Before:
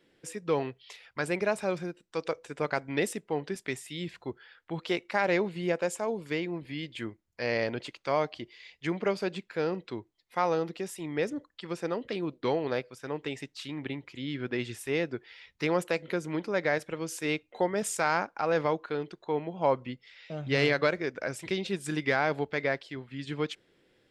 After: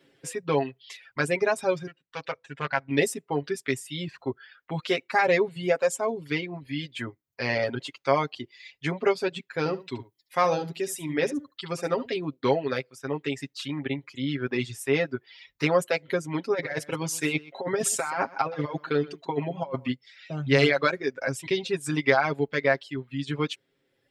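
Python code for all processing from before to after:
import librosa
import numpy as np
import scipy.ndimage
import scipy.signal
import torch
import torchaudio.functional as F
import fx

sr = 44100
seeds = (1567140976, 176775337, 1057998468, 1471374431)

y = fx.chain(x, sr, fx.lowpass(hz=3600.0, slope=12),
    fx.peak_eq(hz=370.0, db=-9.5, octaves=1.4),
    fx.doppler_dist(depth_ms=0.29), at=(1.87, 2.91))
y = fx.chain(y, sr, fx.high_shelf(hz=5300.0, db=5.5),
    fx.echo_single(ms=72, db=-7.5), at=(9.58, 12.11))
y = fx.chain(y, sr, fx.over_compress(threshold_db=-30.0, ratio=-0.5),
    fx.echo_single(ms=125, db=-10.0), at=(16.5, 19.92))
y = fx.dereverb_blind(y, sr, rt60_s=1.2)
y = scipy.signal.sosfilt(scipy.signal.butter(2, 50.0, 'highpass', fs=sr, output='sos'), y)
y = y + 0.79 * np.pad(y, (int(7.4 * sr / 1000.0), 0))[:len(y)]
y = y * 10.0 ** (3.5 / 20.0)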